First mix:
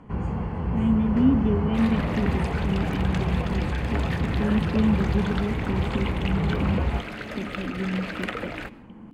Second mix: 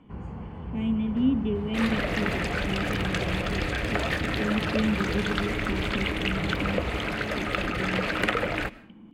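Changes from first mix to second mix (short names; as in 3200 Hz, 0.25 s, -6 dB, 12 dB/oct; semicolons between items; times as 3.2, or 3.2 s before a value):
speech: add tilt +2 dB/oct; first sound -9.5 dB; second sound +6.0 dB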